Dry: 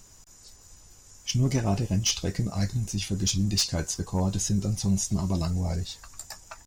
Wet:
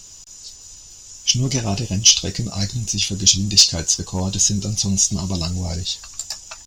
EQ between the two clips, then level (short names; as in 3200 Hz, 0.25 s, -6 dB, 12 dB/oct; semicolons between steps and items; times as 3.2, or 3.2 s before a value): band shelf 4400 Hz +11.5 dB; +3.0 dB